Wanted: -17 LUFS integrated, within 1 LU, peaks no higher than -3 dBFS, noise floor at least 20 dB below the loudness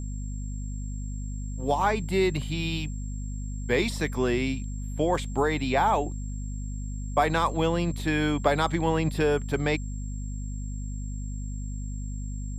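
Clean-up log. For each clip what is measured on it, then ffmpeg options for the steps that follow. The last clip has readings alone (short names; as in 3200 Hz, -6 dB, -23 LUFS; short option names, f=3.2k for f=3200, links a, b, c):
hum 50 Hz; harmonics up to 250 Hz; hum level -30 dBFS; steady tone 7500 Hz; tone level -48 dBFS; loudness -28.5 LUFS; peak -8.0 dBFS; loudness target -17.0 LUFS
-> -af "bandreject=f=50:t=h:w=6,bandreject=f=100:t=h:w=6,bandreject=f=150:t=h:w=6,bandreject=f=200:t=h:w=6,bandreject=f=250:t=h:w=6"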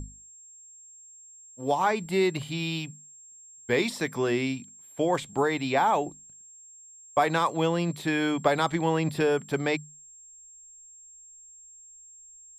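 hum none; steady tone 7500 Hz; tone level -48 dBFS
-> -af "bandreject=f=7.5k:w=30"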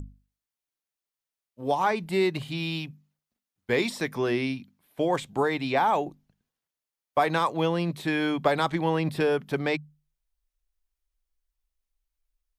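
steady tone none; loudness -27.0 LUFS; peak -8.5 dBFS; loudness target -17.0 LUFS
-> -af "volume=10dB,alimiter=limit=-3dB:level=0:latency=1"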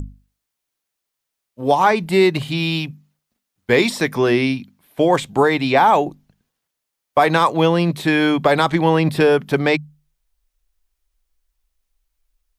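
loudness -17.0 LUFS; peak -3.0 dBFS; noise floor -80 dBFS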